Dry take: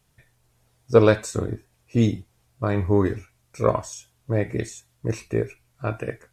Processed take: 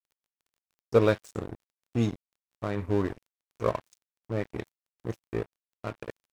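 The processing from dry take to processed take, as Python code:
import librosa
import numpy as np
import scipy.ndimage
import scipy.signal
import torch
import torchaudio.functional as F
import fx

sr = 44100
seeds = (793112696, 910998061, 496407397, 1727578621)

y = np.sign(x) * np.maximum(np.abs(x) - 10.0 ** (-30.0 / 20.0), 0.0)
y = fx.dmg_crackle(y, sr, seeds[0], per_s=13.0, level_db=-49.0)
y = y * 10.0 ** (-5.5 / 20.0)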